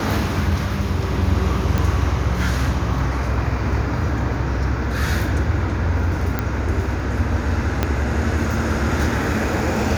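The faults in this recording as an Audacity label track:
1.780000	1.780000	pop
6.390000	6.390000	pop -8 dBFS
7.830000	7.830000	pop -4 dBFS

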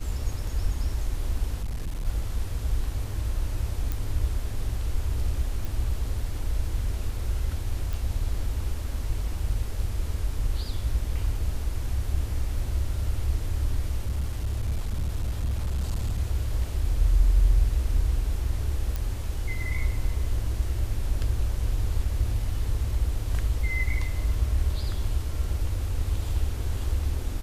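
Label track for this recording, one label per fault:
1.630000	2.060000	clipped -26.5 dBFS
3.920000	3.920000	pop
5.650000	5.650000	pop
7.930000	7.930000	pop
14.060000	16.200000	clipped -23 dBFS
18.960000	18.960000	pop

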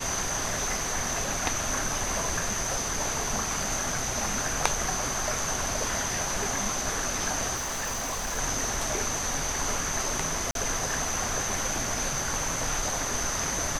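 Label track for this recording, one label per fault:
7.550000	8.390000	clipped -28 dBFS
10.510000	10.550000	dropout 42 ms

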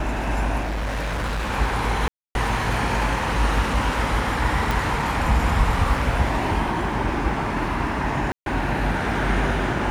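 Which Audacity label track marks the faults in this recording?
0.610000	1.510000	clipped -22.5 dBFS
2.080000	2.350000	dropout 271 ms
4.710000	4.710000	pop
8.320000	8.460000	dropout 142 ms

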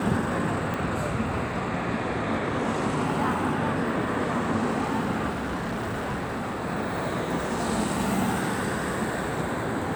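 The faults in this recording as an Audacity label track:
0.740000	0.740000	pop
5.300000	6.620000	clipped -26.5 dBFS

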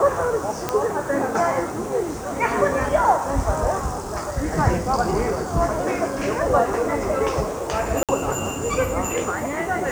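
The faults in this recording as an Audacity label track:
0.690000	0.690000	pop -7 dBFS
8.030000	8.090000	dropout 57 ms

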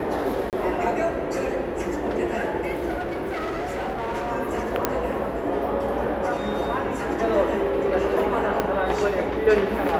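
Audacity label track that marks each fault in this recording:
0.500000	0.530000	dropout 28 ms
3.000000	4.320000	clipped -24.5 dBFS
4.850000	4.850000	pop -5 dBFS
8.600000	8.600000	pop -9 dBFS

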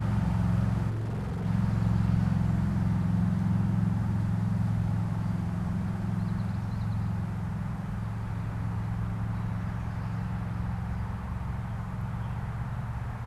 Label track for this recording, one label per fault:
0.890000	1.470000	clipped -29 dBFS

